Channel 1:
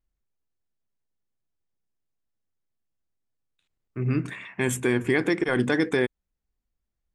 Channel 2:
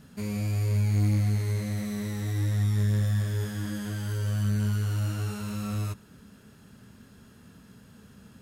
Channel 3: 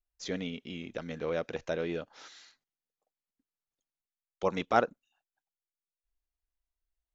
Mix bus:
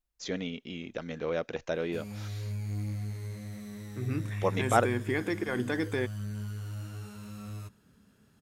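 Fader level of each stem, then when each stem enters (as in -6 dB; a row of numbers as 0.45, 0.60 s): -8.0, -10.5, +1.0 dB; 0.00, 1.75, 0.00 s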